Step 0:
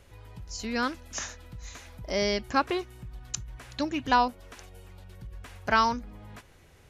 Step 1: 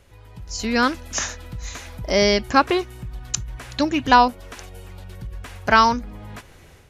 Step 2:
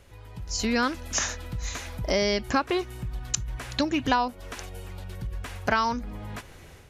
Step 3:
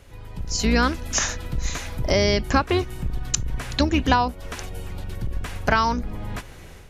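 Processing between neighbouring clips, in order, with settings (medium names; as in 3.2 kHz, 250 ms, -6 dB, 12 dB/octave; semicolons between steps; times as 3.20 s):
level rider gain up to 8.5 dB; trim +1.5 dB
compression 4:1, threshold -22 dBFS, peak gain reduction 11.5 dB
octave divider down 2 oct, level +1 dB; trim +4 dB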